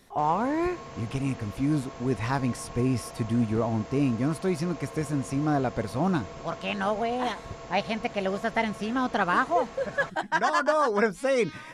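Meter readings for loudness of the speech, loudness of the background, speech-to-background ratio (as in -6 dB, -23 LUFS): -28.0 LUFS, -42.5 LUFS, 14.5 dB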